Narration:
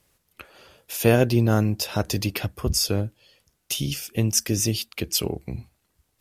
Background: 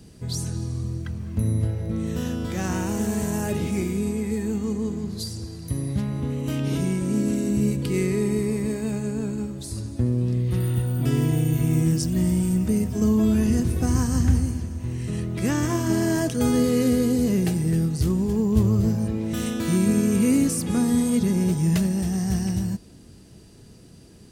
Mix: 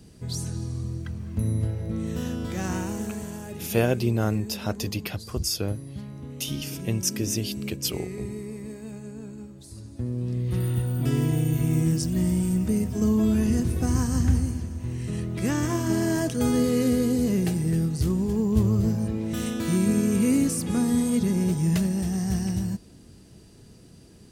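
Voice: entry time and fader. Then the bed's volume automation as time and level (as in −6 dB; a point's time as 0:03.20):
2.70 s, −4.5 dB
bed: 0:02.76 −2.5 dB
0:03.41 −11.5 dB
0:09.67 −11.5 dB
0:10.59 −2 dB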